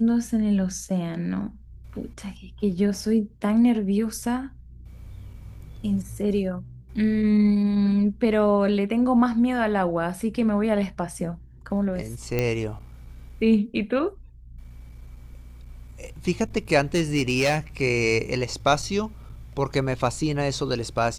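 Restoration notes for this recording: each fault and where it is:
12.39 s: pop -11 dBFS
16.94–17.58 s: clipped -16.5 dBFS

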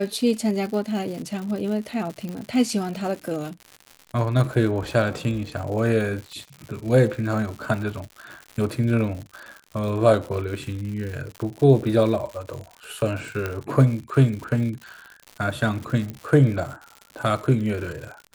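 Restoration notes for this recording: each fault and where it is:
crackle 140 per s -31 dBFS
2.29 s: pop -20 dBFS
13.46 s: pop -13 dBFS
16.10 s: pop -19 dBFS

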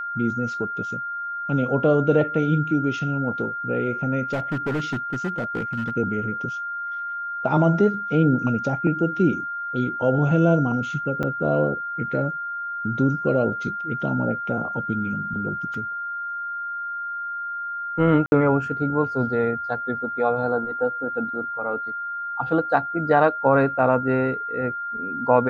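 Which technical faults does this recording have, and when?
whine 1.4 kHz -27 dBFS
4.33–5.97 s: clipped -21 dBFS
11.23–11.24 s: dropout 5.3 ms
15.74 s: dropout 3 ms
18.26–18.32 s: dropout 61 ms

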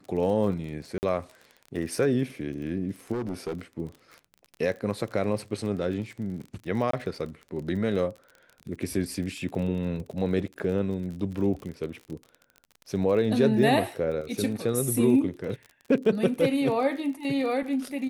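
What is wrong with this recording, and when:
crackle 34 per s -35 dBFS
0.98–1.03 s: dropout 49 ms
3.12–3.61 s: clipped -27 dBFS
6.91–6.93 s: dropout 23 ms

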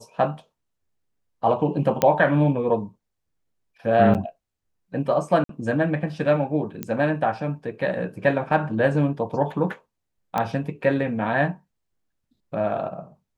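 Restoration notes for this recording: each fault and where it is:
2.02 s: pop -5 dBFS
4.14–4.15 s: dropout 8 ms
5.44–5.49 s: dropout 53 ms
6.83 s: pop -14 dBFS
10.38 s: pop -11 dBFS

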